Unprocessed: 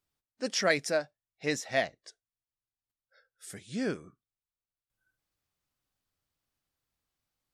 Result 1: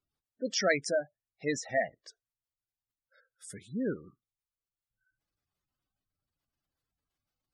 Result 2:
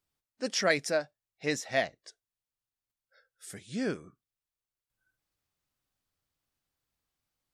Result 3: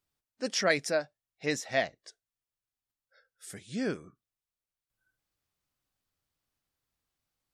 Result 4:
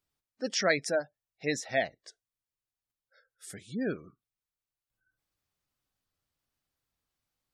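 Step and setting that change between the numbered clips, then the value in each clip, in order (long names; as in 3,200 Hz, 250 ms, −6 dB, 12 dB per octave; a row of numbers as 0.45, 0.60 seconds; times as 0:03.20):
gate on every frequency bin, under each frame's peak: −15, −55, −45, −25 decibels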